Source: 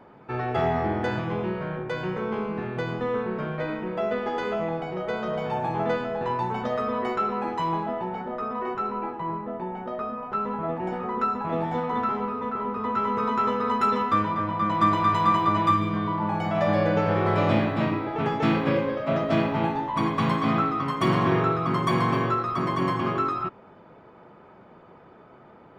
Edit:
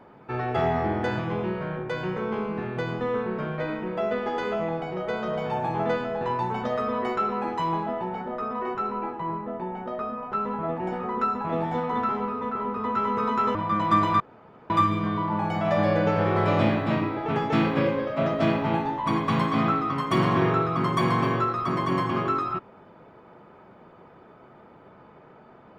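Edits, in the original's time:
13.55–14.45 s: delete
15.10–15.60 s: room tone

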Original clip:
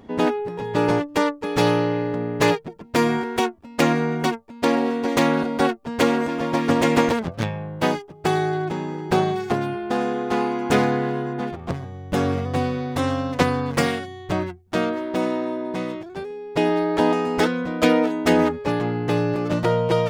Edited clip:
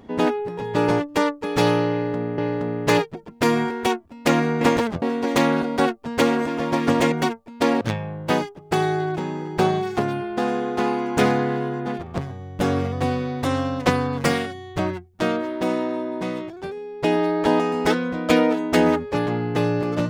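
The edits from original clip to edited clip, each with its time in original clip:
1.91–2.38 s: loop, 2 plays
4.14–4.83 s: swap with 6.93–7.34 s

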